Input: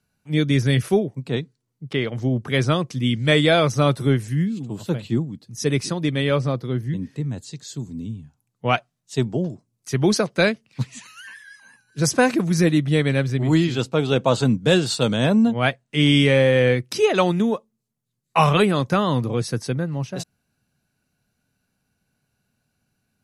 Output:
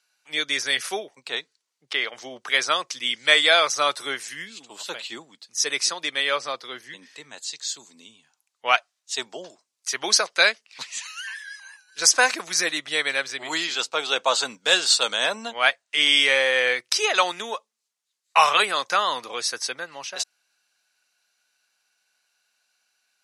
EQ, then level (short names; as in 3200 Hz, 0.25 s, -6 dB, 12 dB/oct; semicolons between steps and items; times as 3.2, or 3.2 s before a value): tilt +3.5 dB/oct; dynamic EQ 2900 Hz, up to -4 dB, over -33 dBFS, Q 1.4; BPF 730–6100 Hz; +3.0 dB